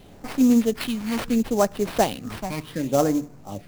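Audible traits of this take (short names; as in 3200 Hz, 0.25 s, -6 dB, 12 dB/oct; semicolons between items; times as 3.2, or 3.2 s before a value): phasing stages 8, 0.7 Hz, lowest notch 470–3900 Hz; aliases and images of a low sample rate 6800 Hz, jitter 20%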